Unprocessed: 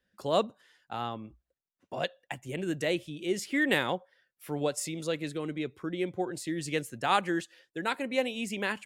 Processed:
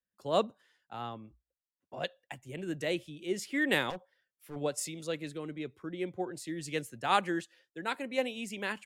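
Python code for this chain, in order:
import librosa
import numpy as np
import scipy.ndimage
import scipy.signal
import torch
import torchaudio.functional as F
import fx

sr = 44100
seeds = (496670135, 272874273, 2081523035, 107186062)

y = fx.overload_stage(x, sr, gain_db=31.5, at=(3.9, 4.56))
y = fx.band_widen(y, sr, depth_pct=40)
y = y * librosa.db_to_amplitude(-3.5)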